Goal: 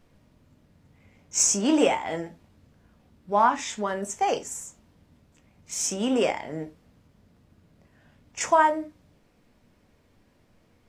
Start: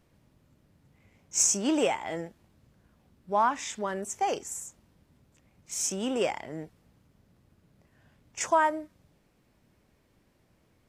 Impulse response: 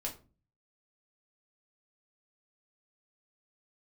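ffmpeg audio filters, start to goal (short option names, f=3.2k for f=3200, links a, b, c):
-filter_complex "[0:a]asplit=2[a][b];[1:a]atrim=start_sample=2205,afade=t=out:st=0.15:d=0.01,atrim=end_sample=7056,lowpass=8.6k[c];[b][c]afir=irnorm=-1:irlink=0,volume=-2.5dB[d];[a][d]amix=inputs=2:normalize=0"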